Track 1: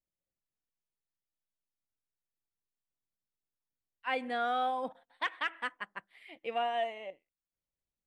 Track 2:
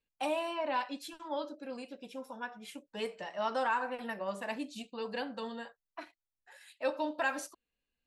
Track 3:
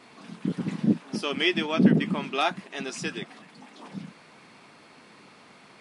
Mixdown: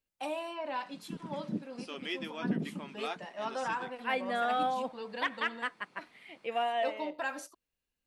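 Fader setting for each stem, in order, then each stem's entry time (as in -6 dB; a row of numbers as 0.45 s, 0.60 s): +1.0 dB, -3.5 dB, -13.5 dB; 0.00 s, 0.00 s, 0.65 s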